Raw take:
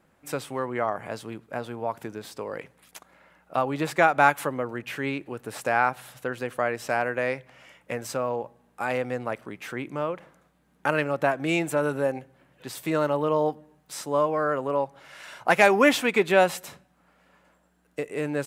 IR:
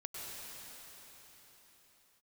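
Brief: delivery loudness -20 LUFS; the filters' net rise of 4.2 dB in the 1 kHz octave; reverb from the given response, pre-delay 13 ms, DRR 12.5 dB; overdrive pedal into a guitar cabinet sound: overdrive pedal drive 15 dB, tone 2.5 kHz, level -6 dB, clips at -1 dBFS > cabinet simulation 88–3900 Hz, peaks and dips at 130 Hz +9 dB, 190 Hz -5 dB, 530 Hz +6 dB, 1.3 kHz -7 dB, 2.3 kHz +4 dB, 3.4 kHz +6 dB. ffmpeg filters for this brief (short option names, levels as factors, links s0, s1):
-filter_complex "[0:a]equalizer=f=1000:t=o:g=6.5,asplit=2[s0][s1];[1:a]atrim=start_sample=2205,adelay=13[s2];[s1][s2]afir=irnorm=-1:irlink=0,volume=0.237[s3];[s0][s3]amix=inputs=2:normalize=0,asplit=2[s4][s5];[s5]highpass=f=720:p=1,volume=5.62,asoftclip=type=tanh:threshold=0.891[s6];[s4][s6]amix=inputs=2:normalize=0,lowpass=f=2500:p=1,volume=0.501,highpass=88,equalizer=f=130:t=q:w=4:g=9,equalizer=f=190:t=q:w=4:g=-5,equalizer=f=530:t=q:w=4:g=6,equalizer=f=1300:t=q:w=4:g=-7,equalizer=f=2300:t=q:w=4:g=4,equalizer=f=3400:t=q:w=4:g=6,lowpass=f=3900:w=0.5412,lowpass=f=3900:w=1.3066,volume=0.794"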